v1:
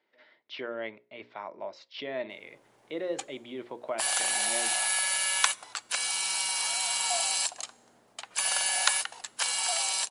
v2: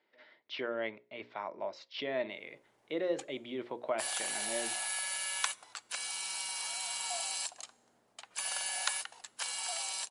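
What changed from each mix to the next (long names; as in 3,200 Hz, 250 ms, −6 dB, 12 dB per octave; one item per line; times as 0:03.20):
background −8.5 dB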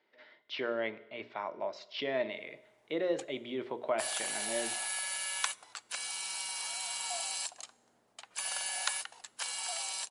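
speech: send on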